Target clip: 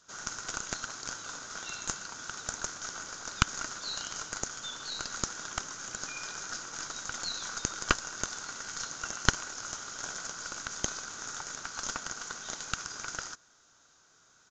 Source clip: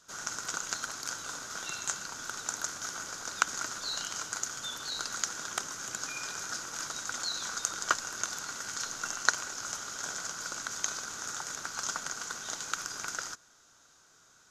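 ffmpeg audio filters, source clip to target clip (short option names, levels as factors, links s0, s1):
-af "aeval=exprs='0.596*(cos(1*acos(clip(val(0)/0.596,-1,1)))-cos(1*PI/2))+0.266*(cos(4*acos(clip(val(0)/0.596,-1,1)))-cos(4*PI/2))':c=same,aresample=16000,aresample=44100,volume=0.841"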